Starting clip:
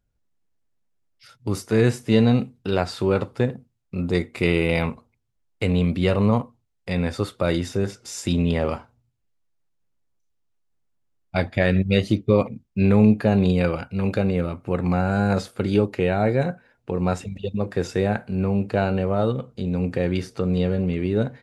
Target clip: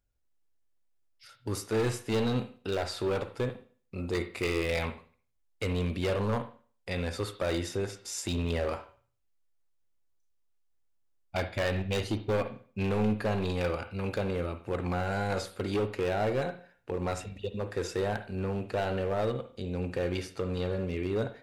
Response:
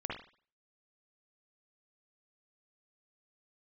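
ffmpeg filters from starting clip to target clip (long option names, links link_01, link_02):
-filter_complex "[0:a]equalizer=frequency=170:width_type=o:width=1.1:gain=-9,asoftclip=type=hard:threshold=-19.5dB,asplit=2[link_01][link_02];[1:a]atrim=start_sample=2205,highshelf=frequency=3800:gain=12[link_03];[link_02][link_03]afir=irnorm=-1:irlink=0,volume=-10.5dB[link_04];[link_01][link_04]amix=inputs=2:normalize=0,volume=-6.5dB"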